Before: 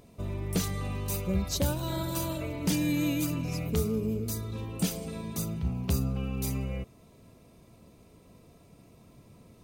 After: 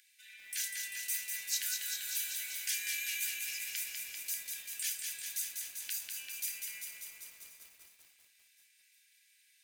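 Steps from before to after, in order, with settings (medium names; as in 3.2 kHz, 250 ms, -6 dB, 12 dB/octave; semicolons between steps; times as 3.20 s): Chebyshev high-pass 1.5 kHz, order 10; dynamic bell 3.8 kHz, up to -5 dB, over -53 dBFS, Q 1.7; multi-head delay 358 ms, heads first and third, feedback 48%, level -22.5 dB; on a send at -7.5 dB: reverberation RT60 0.65 s, pre-delay 3 ms; on the sum: bit-crushed delay 196 ms, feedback 80%, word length 10-bit, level -4 dB; trim +1 dB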